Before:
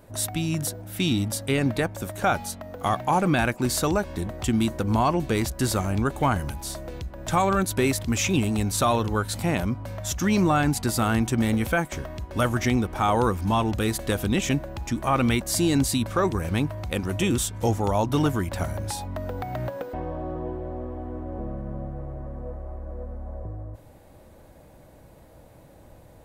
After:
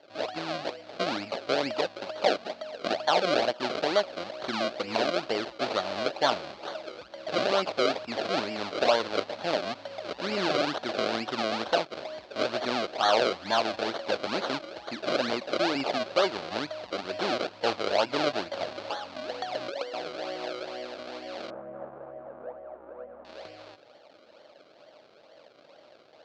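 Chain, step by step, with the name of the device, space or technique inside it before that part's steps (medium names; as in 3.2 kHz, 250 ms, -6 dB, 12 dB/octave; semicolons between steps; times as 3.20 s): circuit-bent sampling toy (decimation with a swept rate 34×, swing 100% 2.2 Hz; cabinet simulation 490–4900 Hz, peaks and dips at 610 Hz +6 dB, 1 kHz -4 dB, 1.9 kHz -5 dB, 4.3 kHz +6 dB); 21.50–23.25 s: low-pass 1.3 kHz 24 dB/octave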